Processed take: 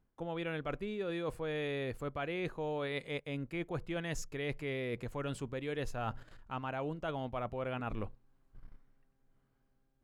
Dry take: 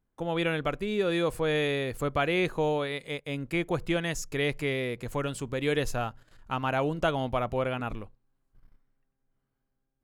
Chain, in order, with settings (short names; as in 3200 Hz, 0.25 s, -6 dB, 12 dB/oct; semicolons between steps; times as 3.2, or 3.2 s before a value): high shelf 4800 Hz -9.5 dB; reverse; compressor 12:1, threshold -40 dBFS, peak gain reduction 19 dB; reverse; gain +5.5 dB